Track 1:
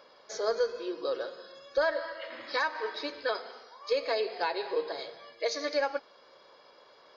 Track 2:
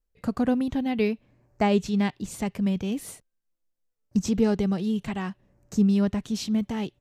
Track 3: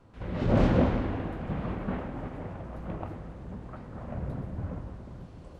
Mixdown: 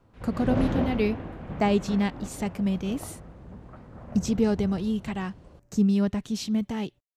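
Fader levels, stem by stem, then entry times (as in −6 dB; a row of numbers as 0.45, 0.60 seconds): muted, −1.0 dB, −3.5 dB; muted, 0.00 s, 0.00 s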